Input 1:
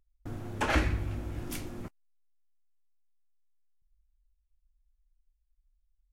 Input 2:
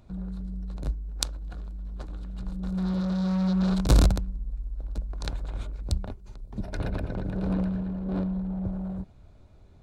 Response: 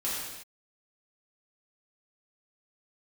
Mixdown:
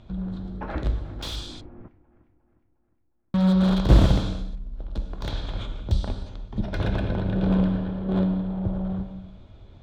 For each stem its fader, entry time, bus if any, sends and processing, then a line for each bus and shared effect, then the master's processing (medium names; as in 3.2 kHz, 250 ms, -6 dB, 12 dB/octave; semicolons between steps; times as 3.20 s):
-3.5 dB, 0.00 s, no send, echo send -18 dB, low-pass 1.2 kHz 12 dB/octave
+3.0 dB, 0.00 s, muted 1.33–3.34 s, send -9 dB, no echo send, peaking EQ 3.3 kHz +11.5 dB 0.25 oct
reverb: on, pre-delay 3 ms
echo: feedback delay 357 ms, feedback 49%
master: low-pass 4.7 kHz 12 dB/octave; slew-rate limiter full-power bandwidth 90 Hz